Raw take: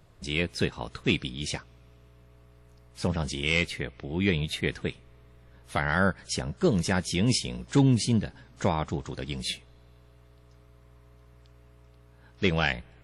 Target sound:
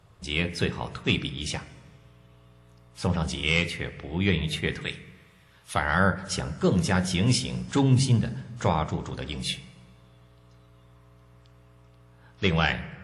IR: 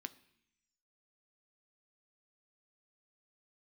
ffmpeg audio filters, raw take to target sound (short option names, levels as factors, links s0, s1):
-filter_complex "[0:a]asettb=1/sr,asplit=3[s0][s1][s2];[s0]atrim=end=4.814[s3];[s1]atrim=start=4.81:end=5.74,asetpts=PTS-STARTPTS,afade=t=in:d=0.004:c=qsin,afade=t=out:st=0.926:d=0.004:c=qsin,tiltshelf=f=1200:g=-8[s4];[s2]atrim=start=5.736[s5];[s3][s4]acrossfade=d=0.004:c1=hsin:c2=qsin[s6];[s6][s5]acrossfade=d=0.004:c1=qsin:c2=hsin[s7];[1:a]atrim=start_sample=2205,asetrate=22932,aresample=44100[s8];[s7][s8]afir=irnorm=-1:irlink=0,volume=1.26"